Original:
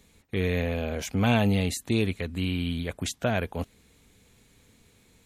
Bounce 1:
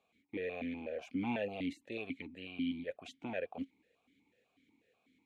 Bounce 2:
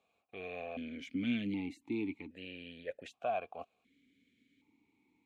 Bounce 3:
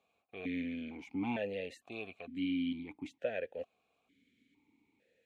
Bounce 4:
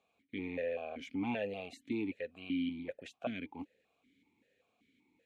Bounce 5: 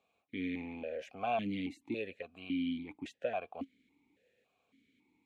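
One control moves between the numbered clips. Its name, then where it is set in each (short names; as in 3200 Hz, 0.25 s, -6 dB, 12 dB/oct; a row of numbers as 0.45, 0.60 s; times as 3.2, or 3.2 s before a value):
vowel sequencer, rate: 8.1, 1.3, 2.2, 5.2, 3.6 Hz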